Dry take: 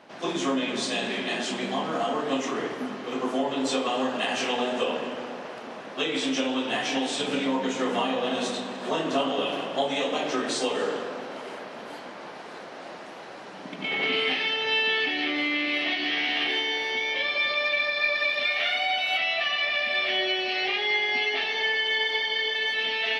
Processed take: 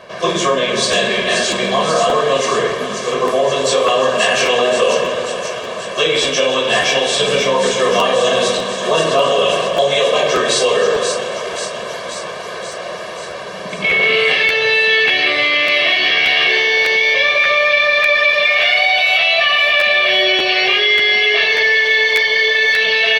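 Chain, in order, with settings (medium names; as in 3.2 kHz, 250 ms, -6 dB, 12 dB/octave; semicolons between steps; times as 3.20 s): bass shelf 69 Hz +9.5 dB; comb 1.8 ms, depth 91%; in parallel at -3 dB: compressor with a negative ratio -25 dBFS; on the sum: feedback echo behind a high-pass 533 ms, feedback 66%, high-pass 4.5 kHz, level -3.5 dB; crackling interface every 0.59 s, samples 512, repeat, from 0.91 s; trim +6 dB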